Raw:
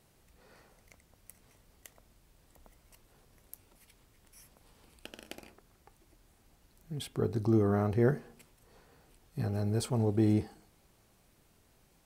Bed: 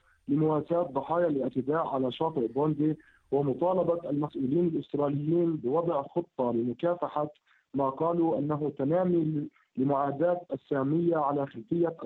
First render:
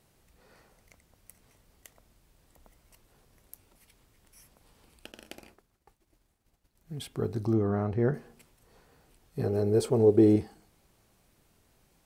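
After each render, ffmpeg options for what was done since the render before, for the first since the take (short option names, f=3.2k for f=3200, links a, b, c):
-filter_complex "[0:a]asettb=1/sr,asplit=3[a][b][c];[a]atrim=end=5.124[d];[b]atrim=start=5.12:end=7,asetpts=PTS-STARTPTS,afade=t=in:d=0.004:c=qsin,afade=t=out:st=1.876:d=0.004:c=qsin,agate=range=-33dB:threshold=-58dB:ratio=3:release=100:detection=peak[e];[c]atrim=start=6.996[f];[d][e]acrossfade=d=0.004:c1=hsin:c2=qsin[g];[g][f]acrossfade=d=0.004:c1=qsin:c2=hsin,asettb=1/sr,asplit=3[h][i][j];[h]atrim=end=7.534[k];[i]atrim=start=7.53:end=8.14,asetpts=PTS-STARTPTS,afade=t=in:d=0.004:c=qsin,afade=t=out:st=0.606:d=0.004:c=qsin,aemphasis=mode=reproduction:type=75kf[l];[j]atrim=start=8.136[m];[k][l]acrossfade=d=0.004:c1=hsin:c2=qsin[n];[n][m]acrossfade=d=0.004:c1=qsin:c2=hsin,asettb=1/sr,asplit=3[o][p][q];[o]atrim=end=9.384[r];[p]atrim=start=9.38:end=10.36,asetpts=PTS-STARTPTS,afade=t=in:d=0.004:c=qsin,afade=t=out:st=0.976:d=0.004:c=qsin,equalizer=f=420:t=o:w=0.86:g=14[s];[q]atrim=start=10.356[t];[r][s]acrossfade=d=0.004:c1=hsin:c2=qsin[u];[u][t]acrossfade=d=0.004:c1=qsin:c2=hsin"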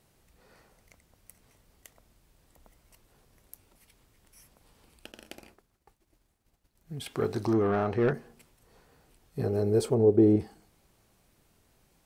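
-filter_complex "[0:a]asettb=1/sr,asplit=3[a][b][c];[a]atrim=end=7.064[d];[b]atrim=start=7.06:end=8.13,asetpts=PTS-STARTPTS,afade=t=in:d=0.004:c=qsin,afade=t=out:st=1.066:d=0.004:c=qsin,asplit=2[e][f];[f]highpass=f=720:p=1,volume=16dB,asoftclip=type=tanh:threshold=-16dB[g];[e][g]amix=inputs=2:normalize=0,lowpass=f=6.3k:p=1,volume=-6dB[h];[c]atrim=start=8.126[i];[d][h]acrossfade=d=0.004:c1=hsin:c2=qsin[j];[j][i]acrossfade=d=0.004:c1=qsin:c2=hsin,asettb=1/sr,asplit=3[k][l][m];[k]atrim=end=9.944[n];[l]atrim=start=9.94:end=10.4,asetpts=PTS-STARTPTS,afade=t=in:d=0.004:c=qsin,afade=t=out:st=0.456:d=0.004:c=qsin,highshelf=f=2.1k:g=-12[o];[m]atrim=start=10.396[p];[n][o]acrossfade=d=0.004:c1=hsin:c2=qsin[q];[q][p]acrossfade=d=0.004:c1=qsin:c2=hsin"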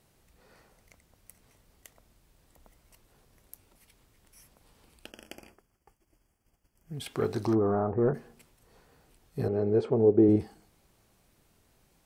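-filter_complex "[0:a]asettb=1/sr,asplit=3[a][b][c];[a]atrim=end=5.104[d];[b]atrim=start=5.1:end=6.95,asetpts=PTS-STARTPTS,afade=t=in:d=0.004:c=qsin,afade=t=out:st=1.846:d=0.004:c=qsin,asuperstop=centerf=3900:order=12:qfactor=3.6[e];[c]atrim=start=6.946[f];[d][e]acrossfade=d=0.004:c1=hsin:c2=qsin[g];[g][f]acrossfade=d=0.004:c1=qsin:c2=hsin,asplit=3[h][i][j];[h]afade=t=out:st=7.54:d=0.02[k];[i]lowpass=f=1.2k:w=0.5412,lowpass=f=1.2k:w=1.3066,afade=t=in:st=7.54:d=0.02,afade=t=out:st=8.13:d=0.02[l];[j]afade=t=in:st=8.13:d=0.02[m];[k][l][m]amix=inputs=3:normalize=0,asettb=1/sr,asplit=3[n][o][p];[n]atrim=end=9.484[q];[o]atrim=start=9.48:end=10.29,asetpts=PTS-STARTPTS,afade=t=in:d=0.004:c=qsin,afade=t=out:st=0.806:d=0.004:c=qsin,highpass=110,lowpass=2.3k[r];[p]atrim=start=10.286[s];[q][r]acrossfade=d=0.004:c1=hsin:c2=qsin[t];[t][s]acrossfade=d=0.004:c1=qsin:c2=hsin"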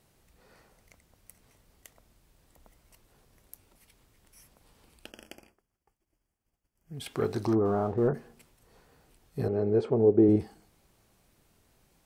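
-filter_complex "[0:a]asettb=1/sr,asplit=3[a][b][c];[a]atrim=end=7.654[d];[b]atrim=start=7.65:end=8.08,asetpts=PTS-STARTPTS,afade=t=in:d=0.004:c=qsin,afade=t=out:st=0.426:d=0.004:c=qsin,aeval=exprs='sgn(val(0))*max(abs(val(0))-0.00178,0)':c=same[e];[c]atrim=start=8.076[f];[d][e]acrossfade=d=0.004:c1=hsin:c2=qsin[g];[g][f]acrossfade=d=0.004:c1=qsin:c2=hsin,asplit=3[h][i][j];[h]atrim=end=5.54,asetpts=PTS-STARTPTS,afade=t=out:st=5.22:d=0.32:silence=0.316228[k];[i]atrim=start=5.54:end=6.75,asetpts=PTS-STARTPTS,volume=-10dB[l];[j]atrim=start=6.75,asetpts=PTS-STARTPTS,afade=t=in:d=0.32:silence=0.316228[m];[k][l][m]concat=n=3:v=0:a=1"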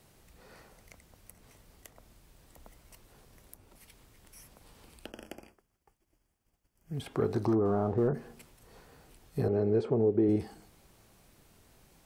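-filter_complex "[0:a]acrossover=split=380|1500[a][b][c];[a]acompressor=threshold=-29dB:ratio=4[d];[b]acompressor=threshold=-33dB:ratio=4[e];[c]acompressor=threshold=-55dB:ratio=4[f];[d][e][f]amix=inputs=3:normalize=0,asplit=2[g][h];[h]alimiter=level_in=7dB:limit=-24dB:level=0:latency=1:release=251,volume=-7dB,volume=-2.5dB[i];[g][i]amix=inputs=2:normalize=0"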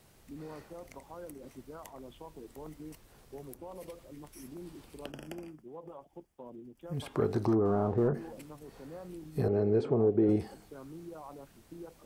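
-filter_complex "[1:a]volume=-19.5dB[a];[0:a][a]amix=inputs=2:normalize=0"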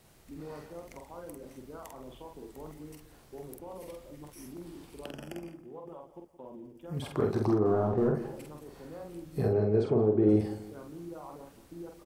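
-filter_complex "[0:a]asplit=2[a][b];[b]adelay=47,volume=-4dB[c];[a][c]amix=inputs=2:normalize=0,asplit=2[d][e];[e]adelay=171,lowpass=f=2k:p=1,volume=-14dB,asplit=2[f][g];[g]adelay=171,lowpass=f=2k:p=1,volume=0.35,asplit=2[h][i];[i]adelay=171,lowpass=f=2k:p=1,volume=0.35[j];[d][f][h][j]amix=inputs=4:normalize=0"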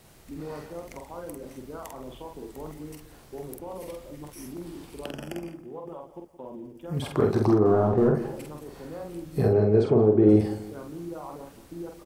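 -af "volume=6dB"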